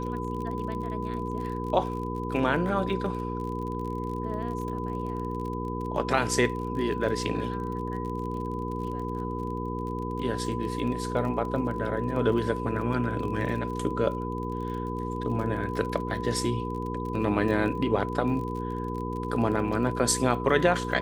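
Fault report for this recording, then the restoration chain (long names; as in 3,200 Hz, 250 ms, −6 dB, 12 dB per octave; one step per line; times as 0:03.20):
surface crackle 35 per second −35 dBFS
mains hum 60 Hz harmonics 8 −33 dBFS
whistle 1,000 Hz −35 dBFS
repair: click removal
notch filter 1,000 Hz, Q 30
hum removal 60 Hz, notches 8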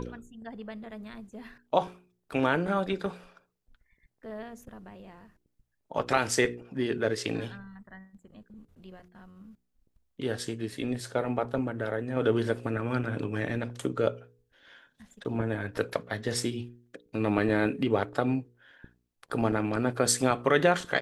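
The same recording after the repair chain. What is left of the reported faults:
none of them is left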